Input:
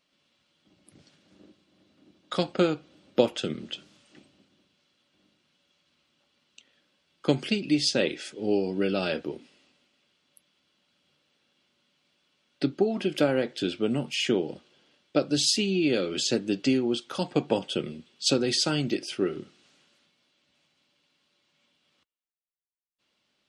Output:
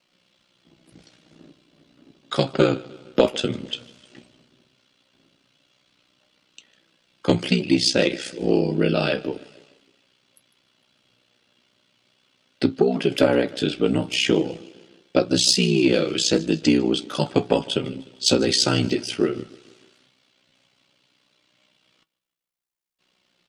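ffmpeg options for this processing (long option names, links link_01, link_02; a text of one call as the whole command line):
ffmpeg -i in.wav -af "aecho=1:1:152|304|456|608:0.0841|0.0438|0.0228|0.0118,aeval=exprs='val(0)*sin(2*PI*31*n/s)':channel_layout=same,flanger=delay=5.4:depth=3.1:regen=66:speed=0.13:shape=triangular,aeval=exprs='0.422*sin(PI/2*2.24*val(0)/0.422)':channel_layout=same,volume=2.5dB" out.wav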